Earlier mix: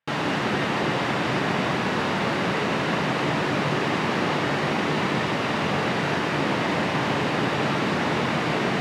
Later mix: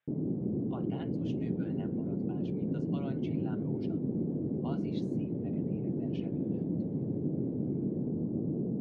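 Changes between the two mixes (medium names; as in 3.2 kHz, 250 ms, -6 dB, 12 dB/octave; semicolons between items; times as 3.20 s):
background: add inverse Chebyshev low-pass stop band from 2.1 kHz, stop band 80 dB; reverb: off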